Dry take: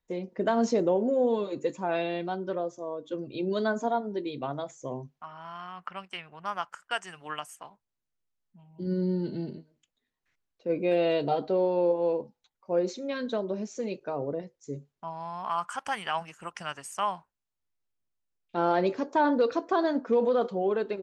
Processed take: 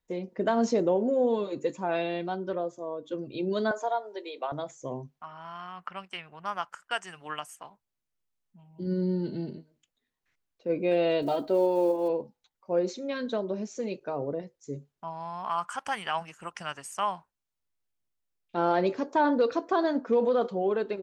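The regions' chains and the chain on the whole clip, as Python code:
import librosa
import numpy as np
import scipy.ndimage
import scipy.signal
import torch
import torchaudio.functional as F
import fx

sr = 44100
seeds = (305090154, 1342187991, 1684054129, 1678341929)

y = fx.chain(x, sr, fx.highpass(hz=47.0, slope=12),
    fx.peak_eq(hz=5700.0, db=-6.5, octaves=0.33), at=(2.53, 3.03))
y = fx.chain(y, sr, fx.highpass(hz=480.0, slope=24),
    fx.band_squash(depth_pct=40), at=(3.71, 4.52))
y = fx.chain(y, sr, fx.block_float(bits=7),
    fx.comb(ms=3.2, depth=0.48), at=(11.22, 12.1))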